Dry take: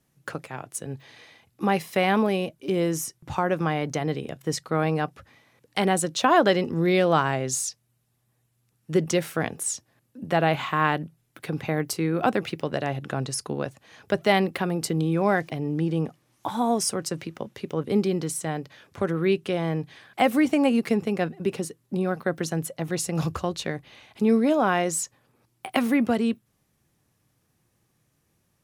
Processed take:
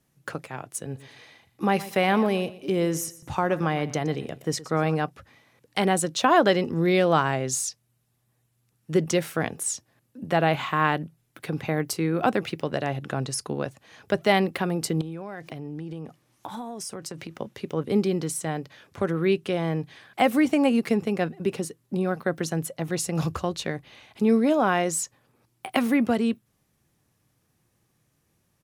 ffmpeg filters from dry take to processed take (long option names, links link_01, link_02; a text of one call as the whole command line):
ffmpeg -i in.wav -filter_complex "[0:a]asplit=3[link_01][link_02][link_03];[link_01]afade=type=out:start_time=0.93:duration=0.02[link_04];[link_02]aecho=1:1:120|240|360:0.141|0.0396|0.0111,afade=type=in:start_time=0.93:duration=0.02,afade=type=out:start_time=4.94:duration=0.02[link_05];[link_03]afade=type=in:start_time=4.94:duration=0.02[link_06];[link_04][link_05][link_06]amix=inputs=3:normalize=0,asettb=1/sr,asplit=3[link_07][link_08][link_09];[link_07]atrim=end=15.014[link_10];[link_08]atrim=start=15.01:end=17.33,asetpts=PTS-STARTPTS,afade=type=in:duration=0.004:curve=qsin,afade=type=out:start_time=2.316:duration=0.004:curve=qsin,acompressor=threshold=-31dB:ratio=12:attack=3.2:release=140:knee=1:detection=peak[link_11];[link_09]atrim=start=17.326[link_12];[link_10][link_11]acrossfade=duration=0.004:curve1=hsin:curve2=qsin[link_13];[link_13][link_12]acrossfade=duration=0.004:curve1=qsin:curve2=hsin" out.wav